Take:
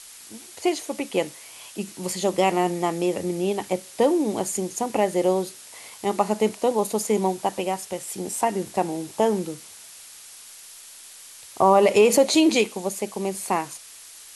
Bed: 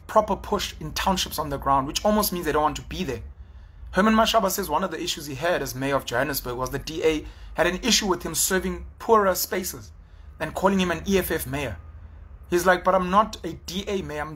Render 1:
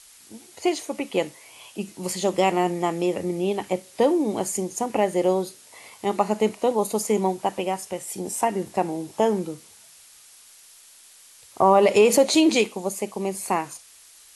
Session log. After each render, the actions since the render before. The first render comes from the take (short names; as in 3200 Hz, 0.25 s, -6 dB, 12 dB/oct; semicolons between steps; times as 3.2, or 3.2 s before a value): noise print and reduce 6 dB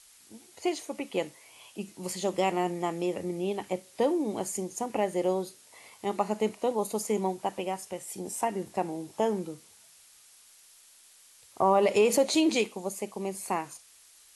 gain -6.5 dB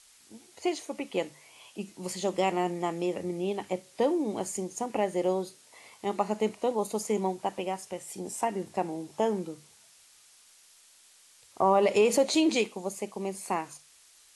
LPF 10000 Hz 12 dB/oct; notches 50/100/150 Hz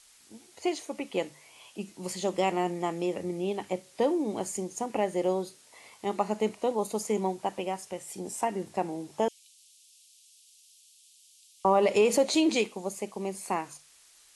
9.28–11.65 steep high-pass 2700 Hz 48 dB/oct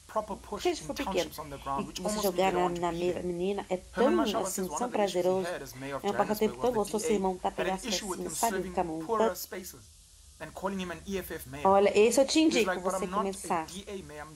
add bed -13 dB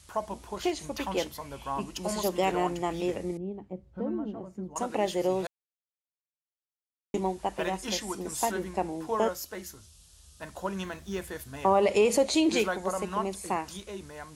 3.37–4.76 band-pass 150 Hz, Q 1; 5.47–7.14 mute; 10.84–11.3 decimation joined by straight lines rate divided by 2×